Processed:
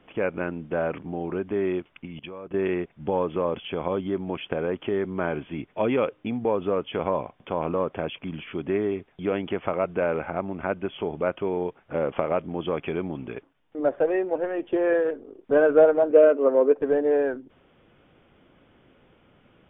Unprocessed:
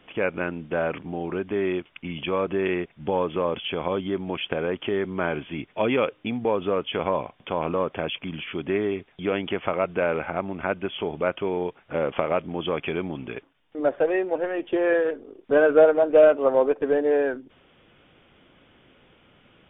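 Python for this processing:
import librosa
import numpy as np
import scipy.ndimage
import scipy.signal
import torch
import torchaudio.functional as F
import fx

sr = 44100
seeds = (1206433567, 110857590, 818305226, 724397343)

y = fx.high_shelf(x, sr, hz=2400.0, db=-11.5)
y = fx.level_steps(y, sr, step_db=19, at=(2.05, 2.54))
y = fx.cabinet(y, sr, low_hz=250.0, low_slope=12, high_hz=3200.0, hz=(270.0, 440.0, 790.0), db=(5, 5, -9), at=(16.11, 16.75))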